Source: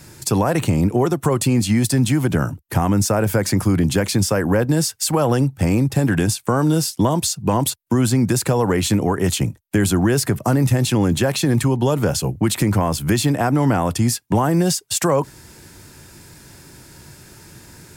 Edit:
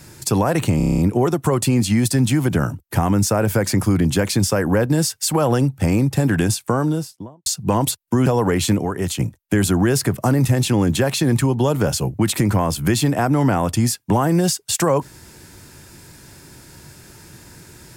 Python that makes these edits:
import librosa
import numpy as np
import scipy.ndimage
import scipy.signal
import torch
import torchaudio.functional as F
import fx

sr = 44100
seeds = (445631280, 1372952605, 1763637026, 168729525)

y = fx.studio_fade_out(x, sr, start_s=6.37, length_s=0.88)
y = fx.edit(y, sr, fx.stutter(start_s=0.77, slice_s=0.03, count=8),
    fx.cut(start_s=8.05, length_s=0.43),
    fx.clip_gain(start_s=9.01, length_s=0.41, db=-4.0), tone=tone)